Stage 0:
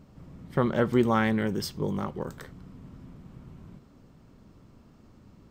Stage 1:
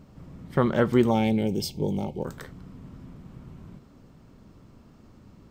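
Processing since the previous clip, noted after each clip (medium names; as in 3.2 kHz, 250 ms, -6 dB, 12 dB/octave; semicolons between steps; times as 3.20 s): time-frequency box 1.11–2.25 s, 930–2100 Hz -20 dB; trim +2.5 dB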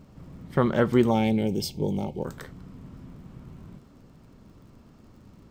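crackle 60 per s -53 dBFS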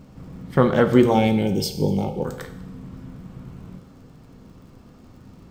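reverberation RT60 0.90 s, pre-delay 3 ms, DRR 6.5 dB; trim +4.5 dB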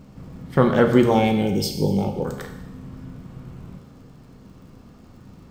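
Schroeder reverb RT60 0.91 s, combs from 30 ms, DRR 8.5 dB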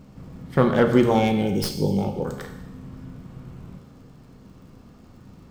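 tracing distortion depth 0.071 ms; trim -1.5 dB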